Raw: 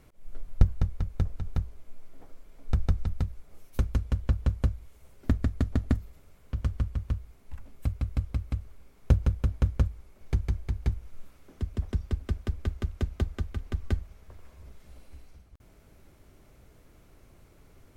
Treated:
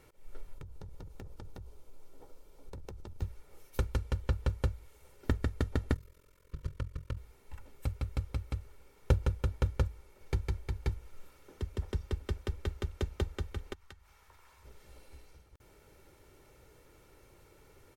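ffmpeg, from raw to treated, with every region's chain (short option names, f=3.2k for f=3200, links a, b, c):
-filter_complex "[0:a]asettb=1/sr,asplit=3[a][b][c];[a]atrim=end=0.544[d];[b]atrim=start=0.54:end=3.22,asetpts=PTS-STARTPTS,afade=t=in:d=0.004:c=qsin,afade=t=out:st=2.676:d=0.004:c=qsin,equalizer=f=1.9k:w=1.2:g=-8.5,acompressor=threshold=-32dB:ratio=5:attack=3.2:release=140:knee=1:detection=peak,aeval=exprs='0.0224*(abs(mod(val(0)/0.0224+3,4)-2)-1)':c=same[e];[c]atrim=start=3.216[f];[d][e]acrossfade=d=0.004:c1=hsin:c2=qsin[g];[g][f]acrossfade=d=0.004:c1=qsin:c2=hsin,asettb=1/sr,asplit=3[h][i][j];[h]atrim=end=5.944[k];[i]atrim=start=5.94:end=7.17,asetpts=PTS-STARTPTS,afade=t=in:d=0.004:c=qsin,afade=t=out:st=1.226:d=0.004:c=qsin,tremolo=f=43:d=0.947,asuperstop=centerf=770:order=8:qfactor=2.9[l];[j]atrim=start=7.166[m];[k][l]acrossfade=d=0.004:c1=hsin:c2=qsin[n];[n][m]acrossfade=d=0.004:c1=qsin:c2=hsin,asettb=1/sr,asplit=3[o][p][q];[o]atrim=end=13.734[r];[p]atrim=start=13.73:end=14.65,asetpts=PTS-STARTPTS,afade=t=in:d=0.004:c=qsin,afade=t=out:st=0.916:d=0.004:c=qsin,lowshelf=f=690:t=q:w=1.5:g=-8.5,acompressor=threshold=-50dB:ratio=3:attack=3.2:release=140:knee=1:detection=peak[s];[q]atrim=start=14.646[t];[r][s]acrossfade=d=0.004:c1=hsin:c2=qsin[u];[u][t]acrossfade=d=0.004:c1=qsin:c2=hsin,lowshelf=f=120:g=-11,aecho=1:1:2.2:0.5"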